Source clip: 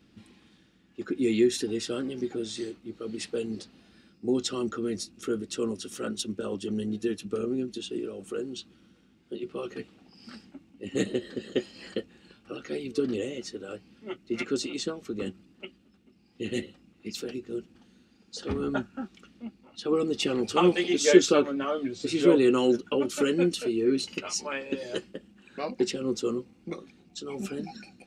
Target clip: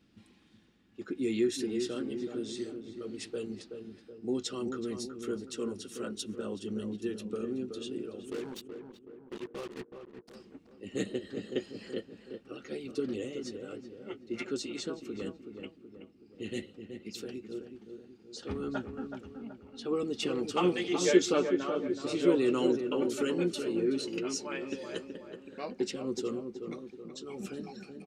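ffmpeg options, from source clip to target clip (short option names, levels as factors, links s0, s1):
-filter_complex "[0:a]asplit=3[s0][s1][s2];[s0]afade=t=out:st=8.29:d=0.02[s3];[s1]acrusher=bits=5:mix=0:aa=0.5,afade=t=in:st=8.29:d=0.02,afade=t=out:st=10.34:d=0.02[s4];[s2]afade=t=in:st=10.34:d=0.02[s5];[s3][s4][s5]amix=inputs=3:normalize=0,asplit=2[s6][s7];[s7]adelay=375,lowpass=f=1400:p=1,volume=0.473,asplit=2[s8][s9];[s9]adelay=375,lowpass=f=1400:p=1,volume=0.52,asplit=2[s10][s11];[s11]adelay=375,lowpass=f=1400:p=1,volume=0.52,asplit=2[s12][s13];[s13]adelay=375,lowpass=f=1400:p=1,volume=0.52,asplit=2[s14][s15];[s15]adelay=375,lowpass=f=1400:p=1,volume=0.52,asplit=2[s16][s17];[s17]adelay=375,lowpass=f=1400:p=1,volume=0.52[s18];[s6][s8][s10][s12][s14][s16][s18]amix=inputs=7:normalize=0,volume=0.501"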